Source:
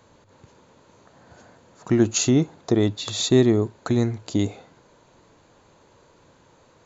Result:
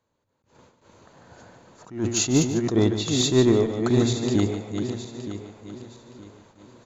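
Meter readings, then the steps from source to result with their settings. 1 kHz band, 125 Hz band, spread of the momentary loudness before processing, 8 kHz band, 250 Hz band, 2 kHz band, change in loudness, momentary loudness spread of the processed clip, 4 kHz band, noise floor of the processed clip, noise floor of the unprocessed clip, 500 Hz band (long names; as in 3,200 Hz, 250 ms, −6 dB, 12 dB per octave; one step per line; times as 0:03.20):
+1.5 dB, −0.5 dB, 8 LU, can't be measured, −0.5 dB, 0.0 dB, −1.0 dB, 21 LU, +1.0 dB, −75 dBFS, −57 dBFS, 0.0 dB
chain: feedback delay that plays each chunk backwards 459 ms, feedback 52%, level −7 dB
noise gate with hold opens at −43 dBFS
in parallel at −5 dB: hard clipping −15.5 dBFS, distortion −11 dB
on the sum: repeating echo 147 ms, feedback 20%, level −10.5 dB
level that may rise only so fast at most 150 dB per second
level −3.5 dB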